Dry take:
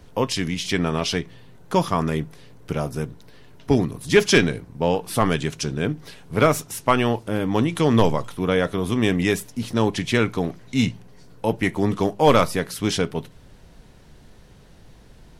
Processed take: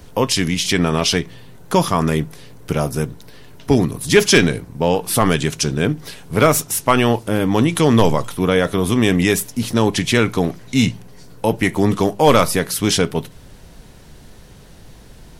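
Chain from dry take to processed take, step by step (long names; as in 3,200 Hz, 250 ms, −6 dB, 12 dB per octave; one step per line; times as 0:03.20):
high-shelf EQ 6,800 Hz +8 dB
in parallel at +2 dB: brickwall limiter −12 dBFS, peak gain reduction 7.5 dB
on the sum: level −1 dB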